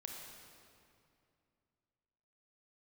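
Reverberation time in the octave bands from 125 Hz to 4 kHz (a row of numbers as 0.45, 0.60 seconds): 3.1, 3.0, 2.6, 2.4, 2.2, 1.9 seconds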